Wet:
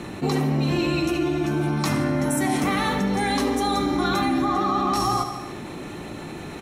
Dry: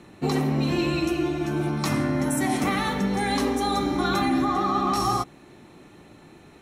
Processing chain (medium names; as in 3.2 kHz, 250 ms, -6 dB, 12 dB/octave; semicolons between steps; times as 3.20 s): feedback delay 75 ms, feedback 53%, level -15.5 dB; level flattener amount 50%